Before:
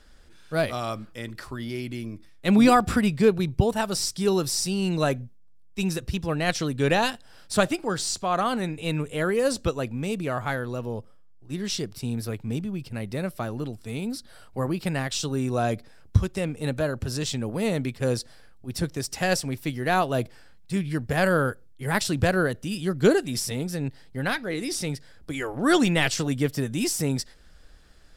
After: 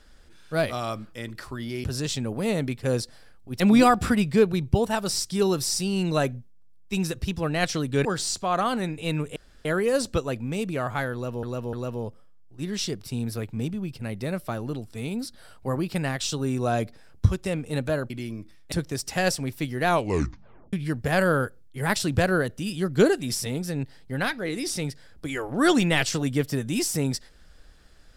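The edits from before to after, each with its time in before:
1.84–2.46 swap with 17.01–18.77
6.91–7.85 cut
9.16 insert room tone 0.29 s
10.64–10.94 loop, 3 plays
19.92 tape stop 0.86 s

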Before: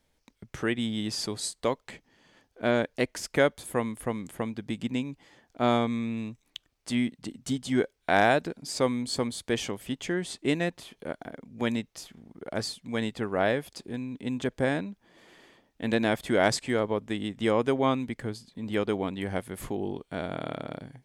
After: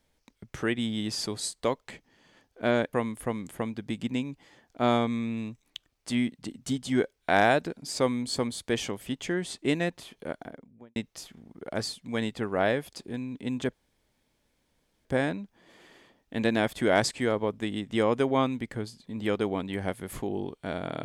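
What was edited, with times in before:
2.93–3.73 cut
11.14–11.76 studio fade out
14.53 insert room tone 1.32 s

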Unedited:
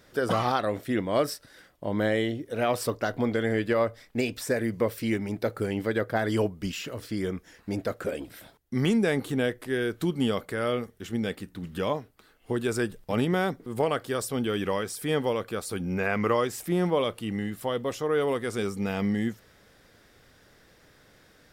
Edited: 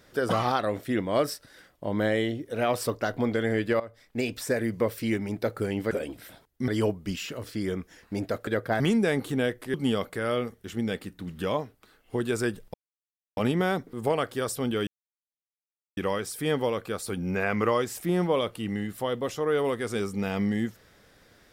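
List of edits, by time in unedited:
3.8–4.3 fade in, from -18.5 dB
5.91–6.24 swap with 8.03–8.8
9.74–10.1 cut
13.1 insert silence 0.63 s
14.6 insert silence 1.10 s

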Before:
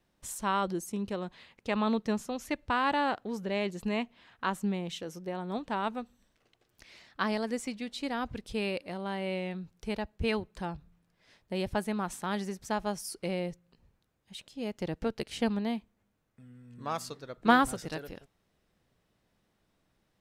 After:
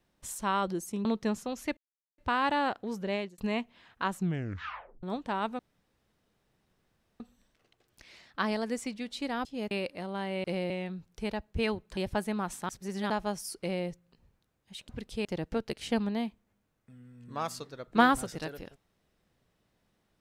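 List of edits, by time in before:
1.05–1.88 cut
2.6 insert silence 0.41 s
3.55–3.8 fade out
4.58 tape stop 0.87 s
6.01 insert room tone 1.61 s
8.26–8.62 swap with 14.49–14.75
10.62–11.57 cut
12.29–12.7 reverse
13.2–13.46 copy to 9.35

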